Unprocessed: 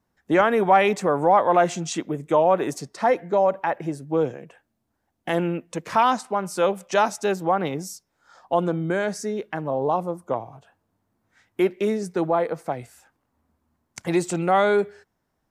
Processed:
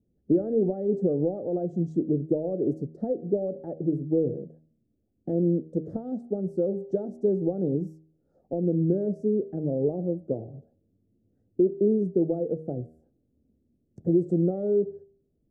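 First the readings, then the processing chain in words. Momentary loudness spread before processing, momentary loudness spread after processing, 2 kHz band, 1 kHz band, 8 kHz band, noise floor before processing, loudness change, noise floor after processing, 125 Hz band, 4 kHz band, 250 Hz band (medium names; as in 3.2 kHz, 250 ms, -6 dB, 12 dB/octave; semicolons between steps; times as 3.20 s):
12 LU, 10 LU, under -40 dB, -26.0 dB, under -35 dB, -75 dBFS, -4.5 dB, -73 dBFS, +2.0 dB, under -40 dB, +1.5 dB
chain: de-hum 79.07 Hz, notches 10; compression 10:1, threshold -21 dBFS, peak gain reduction 10 dB; inverse Chebyshev low-pass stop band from 940 Hz, stop band 40 dB; trim +4.5 dB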